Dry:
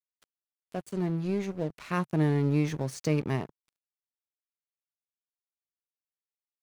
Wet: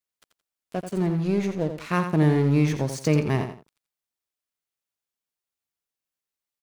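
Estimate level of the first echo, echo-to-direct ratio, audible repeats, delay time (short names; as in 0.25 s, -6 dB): -8.5 dB, -8.0 dB, 2, 86 ms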